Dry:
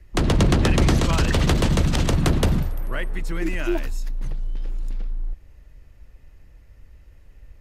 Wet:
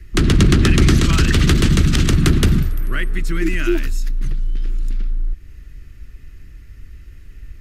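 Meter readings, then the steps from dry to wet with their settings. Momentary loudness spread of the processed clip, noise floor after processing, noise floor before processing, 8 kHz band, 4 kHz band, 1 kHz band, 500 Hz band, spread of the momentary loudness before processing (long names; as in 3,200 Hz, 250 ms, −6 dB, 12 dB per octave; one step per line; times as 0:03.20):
13 LU, −40 dBFS, −50 dBFS, +6.0 dB, +6.0 dB, −0.5 dB, +1.5 dB, 14 LU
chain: flat-topped bell 700 Hz −13.5 dB 1.3 octaves
in parallel at −1.5 dB: downward compressor, threshold −32 dBFS, peak gain reduction 17.5 dB
on the sum: level +4.5 dB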